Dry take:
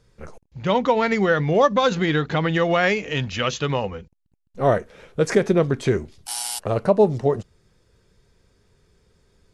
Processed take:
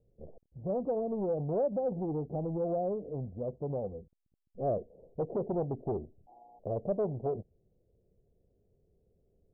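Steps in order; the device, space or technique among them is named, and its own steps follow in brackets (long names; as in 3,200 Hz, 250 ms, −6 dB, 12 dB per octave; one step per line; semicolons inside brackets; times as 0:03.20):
inverse Chebyshev low-pass filter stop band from 3,200 Hz, stop band 80 dB
overdriven synthesiser ladder filter (soft clipping −19.5 dBFS, distortion −10 dB; transistor ladder low-pass 810 Hz, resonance 60%)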